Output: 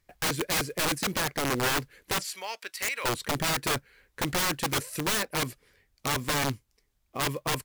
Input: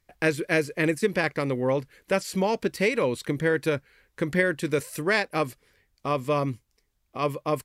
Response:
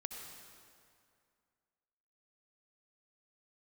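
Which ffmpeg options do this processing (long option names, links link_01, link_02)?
-filter_complex "[0:a]asplit=3[link_01][link_02][link_03];[link_01]afade=type=out:start_time=2.24:duration=0.02[link_04];[link_02]highpass=1400,afade=type=in:start_time=2.24:duration=0.02,afade=type=out:start_time=3.04:duration=0.02[link_05];[link_03]afade=type=in:start_time=3.04:duration=0.02[link_06];[link_04][link_05][link_06]amix=inputs=3:normalize=0,aeval=exprs='(mod(11.9*val(0)+1,2)-1)/11.9':channel_layout=same,acrusher=bits=5:mode=log:mix=0:aa=0.000001"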